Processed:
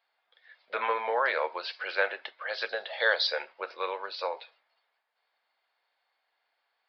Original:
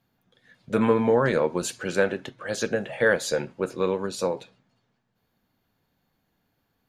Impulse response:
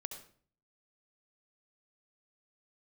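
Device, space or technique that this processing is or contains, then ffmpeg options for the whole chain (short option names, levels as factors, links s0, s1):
musical greeting card: -filter_complex "[0:a]aresample=11025,aresample=44100,highpass=f=640:w=0.5412,highpass=f=640:w=1.3066,equalizer=f=2100:t=o:w=0.26:g=5.5,asettb=1/sr,asplit=3[s0][s1][s2];[s0]atrim=end=2.694[s3];[s1]atrim=start=2.69:end=3.27,asetpts=PTS-STARTPTS,afade=t=in:d=0.004:c=qsin,afade=t=out:st=0.576:d=0.004:c=qsin,highshelf=f=3100:t=q:w=3:g=7[s4];[s2]atrim=start=3.266[s5];[s3][s4]acrossfade=d=0.004:c1=hsin:c2=qsin[s6];[s6][s5]acrossfade=d=0.004:c1=qsin:c2=hsin"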